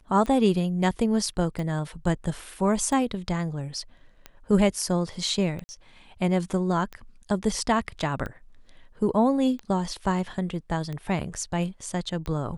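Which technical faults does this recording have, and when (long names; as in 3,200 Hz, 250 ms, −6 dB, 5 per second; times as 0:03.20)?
scratch tick 45 rpm −22 dBFS
0:05.64–0:05.69: drop-out 50 ms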